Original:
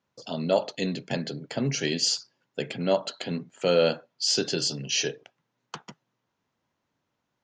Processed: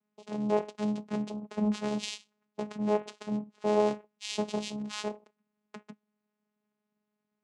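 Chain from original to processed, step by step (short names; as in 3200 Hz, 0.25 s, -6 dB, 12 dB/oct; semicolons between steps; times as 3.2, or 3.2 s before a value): vocoder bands 4, saw 210 Hz; gain -3.5 dB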